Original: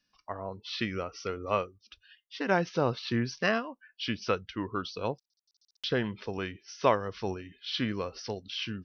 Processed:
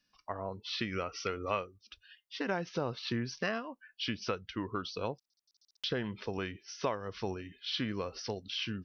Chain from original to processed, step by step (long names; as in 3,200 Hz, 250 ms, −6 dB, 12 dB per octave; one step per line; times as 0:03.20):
downward compressor 3 to 1, threshold −32 dBFS, peak gain reduction 11 dB
0:00.92–0:01.60: parametric band 2,400 Hz +6 dB 1.9 octaves